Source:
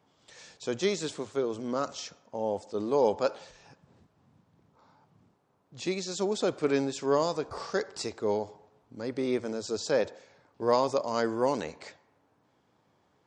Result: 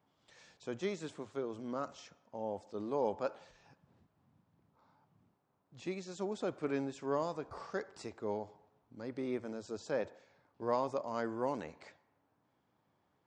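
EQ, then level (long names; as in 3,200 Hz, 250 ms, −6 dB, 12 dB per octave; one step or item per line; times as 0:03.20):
dynamic equaliser 4,400 Hz, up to −6 dB, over −51 dBFS, Q 1.3
parametric band 450 Hz −3.5 dB 0.53 octaves
parametric band 7,800 Hz −6.5 dB 1.8 octaves
−7.0 dB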